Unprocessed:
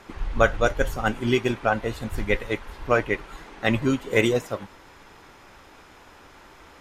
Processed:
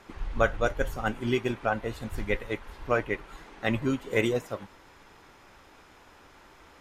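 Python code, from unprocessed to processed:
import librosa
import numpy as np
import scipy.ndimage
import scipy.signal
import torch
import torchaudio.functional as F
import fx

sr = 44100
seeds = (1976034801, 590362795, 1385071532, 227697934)

y = fx.dynamic_eq(x, sr, hz=5500.0, q=0.74, threshold_db=-40.0, ratio=4.0, max_db=-3)
y = y * librosa.db_to_amplitude(-5.0)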